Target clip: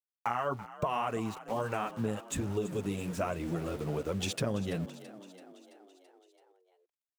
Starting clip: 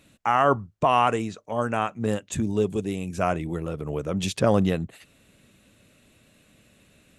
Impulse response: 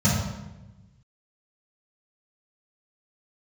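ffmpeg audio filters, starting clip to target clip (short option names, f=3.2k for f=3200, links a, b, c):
-filter_complex "[0:a]flanger=delay=1.8:depth=7.5:regen=-4:speed=1.2:shape=sinusoidal,aeval=exprs='val(0)*gte(abs(val(0)),0.00708)':c=same,acompressor=threshold=-29dB:ratio=6,asplit=2[a][b];[b]asplit=6[c][d][e][f][g][h];[c]adelay=333,afreqshift=45,volume=-15.5dB[i];[d]adelay=666,afreqshift=90,volume=-19.7dB[j];[e]adelay=999,afreqshift=135,volume=-23.8dB[k];[f]adelay=1332,afreqshift=180,volume=-28dB[l];[g]adelay=1665,afreqshift=225,volume=-32.1dB[m];[h]adelay=1998,afreqshift=270,volume=-36.3dB[n];[i][j][k][l][m][n]amix=inputs=6:normalize=0[o];[a][o]amix=inputs=2:normalize=0"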